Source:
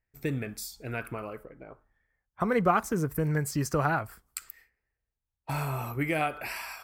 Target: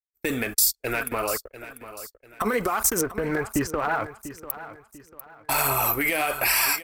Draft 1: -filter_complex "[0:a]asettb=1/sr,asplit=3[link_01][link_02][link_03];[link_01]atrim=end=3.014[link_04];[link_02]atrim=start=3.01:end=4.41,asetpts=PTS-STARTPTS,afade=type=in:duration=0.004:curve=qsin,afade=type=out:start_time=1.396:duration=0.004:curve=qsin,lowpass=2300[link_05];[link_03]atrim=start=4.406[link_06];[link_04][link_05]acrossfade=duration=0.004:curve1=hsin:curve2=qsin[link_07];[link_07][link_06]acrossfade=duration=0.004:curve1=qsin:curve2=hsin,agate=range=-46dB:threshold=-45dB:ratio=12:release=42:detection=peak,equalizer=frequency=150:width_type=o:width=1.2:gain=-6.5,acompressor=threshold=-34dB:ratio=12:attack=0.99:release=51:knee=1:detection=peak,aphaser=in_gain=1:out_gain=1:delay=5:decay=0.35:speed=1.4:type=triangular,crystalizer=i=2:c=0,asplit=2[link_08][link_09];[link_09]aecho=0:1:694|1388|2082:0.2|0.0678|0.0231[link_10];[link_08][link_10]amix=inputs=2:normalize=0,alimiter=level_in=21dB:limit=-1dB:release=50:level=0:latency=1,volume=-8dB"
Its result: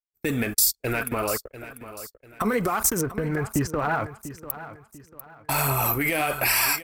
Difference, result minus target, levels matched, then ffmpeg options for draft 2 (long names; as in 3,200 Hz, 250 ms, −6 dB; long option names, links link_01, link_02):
125 Hz band +7.0 dB
-filter_complex "[0:a]asettb=1/sr,asplit=3[link_01][link_02][link_03];[link_01]atrim=end=3.014[link_04];[link_02]atrim=start=3.01:end=4.41,asetpts=PTS-STARTPTS,afade=type=in:duration=0.004:curve=qsin,afade=type=out:start_time=1.396:duration=0.004:curve=qsin,lowpass=2300[link_05];[link_03]atrim=start=4.406[link_06];[link_04][link_05]acrossfade=duration=0.004:curve1=hsin:curve2=qsin[link_07];[link_07][link_06]acrossfade=duration=0.004:curve1=qsin:curve2=hsin,agate=range=-46dB:threshold=-45dB:ratio=12:release=42:detection=peak,equalizer=frequency=150:width_type=o:width=1.2:gain=-18,acompressor=threshold=-34dB:ratio=12:attack=0.99:release=51:knee=1:detection=peak,aphaser=in_gain=1:out_gain=1:delay=5:decay=0.35:speed=1.4:type=triangular,crystalizer=i=2:c=0,asplit=2[link_08][link_09];[link_09]aecho=0:1:694|1388|2082:0.2|0.0678|0.0231[link_10];[link_08][link_10]amix=inputs=2:normalize=0,alimiter=level_in=21dB:limit=-1dB:release=50:level=0:latency=1,volume=-8dB"